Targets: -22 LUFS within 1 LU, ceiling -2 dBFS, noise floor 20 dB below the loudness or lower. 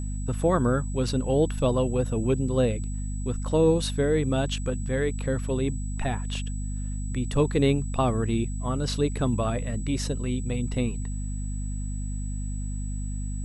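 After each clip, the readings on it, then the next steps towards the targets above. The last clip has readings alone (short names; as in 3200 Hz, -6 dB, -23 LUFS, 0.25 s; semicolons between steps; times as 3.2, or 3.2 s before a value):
hum 50 Hz; harmonics up to 250 Hz; hum level -28 dBFS; steady tone 7900 Hz; tone level -44 dBFS; loudness -27.0 LUFS; peak -9.5 dBFS; loudness target -22.0 LUFS
-> notches 50/100/150/200/250 Hz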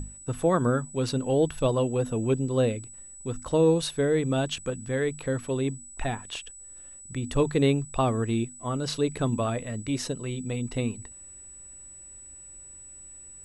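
hum none; steady tone 7900 Hz; tone level -44 dBFS
-> notch 7900 Hz, Q 30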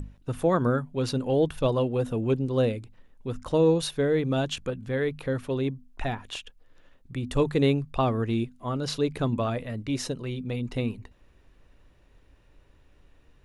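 steady tone none; loudness -27.5 LUFS; peak -11.5 dBFS; loudness target -22.0 LUFS
-> gain +5.5 dB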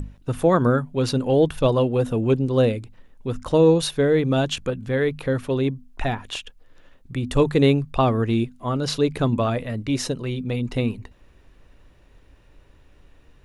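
loudness -22.0 LUFS; peak -6.0 dBFS; noise floor -54 dBFS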